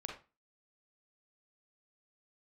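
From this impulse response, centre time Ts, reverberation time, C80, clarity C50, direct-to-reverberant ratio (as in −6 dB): 27 ms, 0.30 s, 12.0 dB, 5.0 dB, 0.5 dB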